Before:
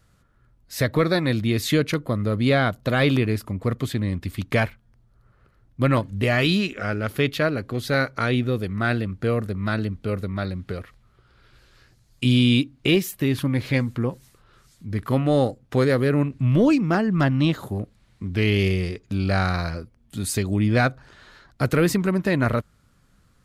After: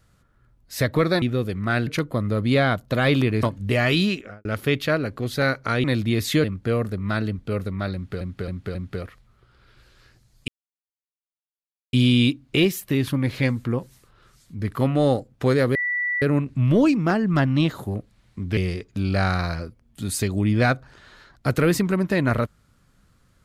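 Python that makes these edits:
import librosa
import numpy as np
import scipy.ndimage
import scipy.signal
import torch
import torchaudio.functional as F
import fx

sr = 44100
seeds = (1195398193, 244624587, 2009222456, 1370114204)

y = fx.studio_fade_out(x, sr, start_s=6.62, length_s=0.35)
y = fx.edit(y, sr, fx.swap(start_s=1.22, length_s=0.6, other_s=8.36, other_length_s=0.65),
    fx.cut(start_s=3.38, length_s=2.57),
    fx.repeat(start_s=10.51, length_s=0.27, count=4),
    fx.insert_silence(at_s=12.24, length_s=1.45),
    fx.insert_tone(at_s=16.06, length_s=0.47, hz=1960.0, db=-21.5),
    fx.cut(start_s=18.41, length_s=0.31), tone=tone)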